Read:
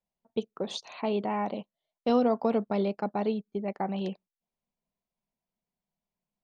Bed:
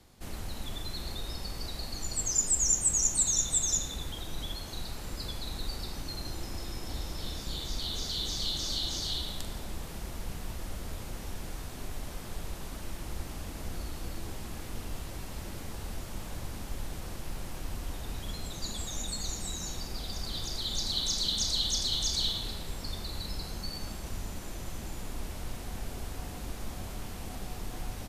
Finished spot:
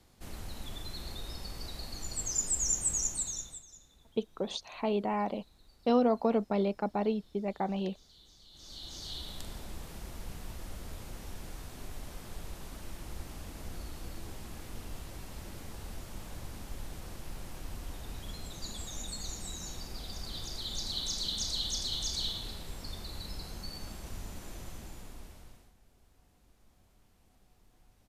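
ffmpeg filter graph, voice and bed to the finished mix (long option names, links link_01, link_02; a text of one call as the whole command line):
ffmpeg -i stem1.wav -i stem2.wav -filter_complex "[0:a]adelay=3800,volume=-1.5dB[link_01];[1:a]volume=17dB,afade=type=out:start_time=2.94:duration=0.7:silence=0.0841395,afade=type=in:start_time=8.5:duration=0.97:silence=0.0891251,afade=type=out:start_time=24.57:duration=1.17:silence=0.0794328[link_02];[link_01][link_02]amix=inputs=2:normalize=0" out.wav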